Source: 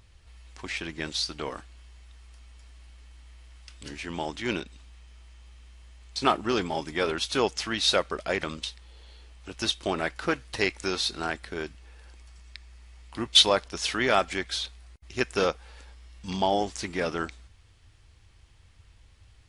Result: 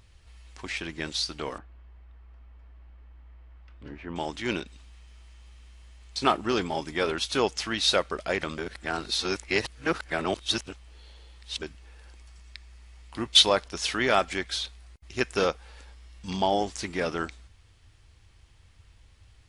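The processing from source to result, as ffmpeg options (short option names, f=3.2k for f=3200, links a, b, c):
-filter_complex "[0:a]asettb=1/sr,asplit=3[a][b][c];[a]atrim=end=1.584[d];[b]atrim=start=1.58:end=4.16,asetpts=PTS-STARTPTS,afade=t=in:d=0.004:c=qsin,afade=t=out:st=2.576:d=0.004:c=qsin,lowpass=1.4k[e];[c]atrim=start=4.156[f];[d][e]acrossfade=d=0.004:c1=hsin:c2=qsin[g];[g][f]acrossfade=d=0.004:c1=qsin:c2=hsin,asplit=3[h][i][j];[h]atrim=end=8.582[k];[i]atrim=start=8.578:end=11.622,asetpts=PTS-STARTPTS,areverse[l];[j]atrim=start=11.618[m];[k][l]acrossfade=d=0.004:c1=hsin:c2=hsin[n];[n][m]acrossfade=d=0.004:c1=hsin:c2=hsin"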